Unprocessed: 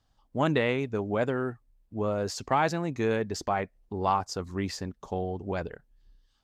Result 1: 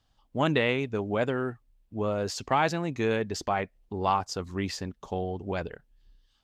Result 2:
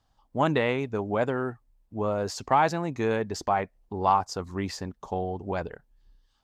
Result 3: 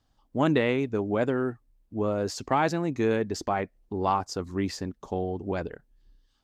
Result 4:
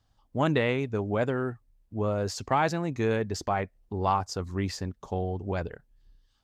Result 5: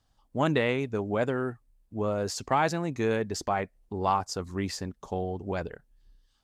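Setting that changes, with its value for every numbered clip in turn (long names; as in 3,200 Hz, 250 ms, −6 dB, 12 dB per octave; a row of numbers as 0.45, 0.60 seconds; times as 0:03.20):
parametric band, centre frequency: 3,000, 890, 300, 93, 9,800 Hertz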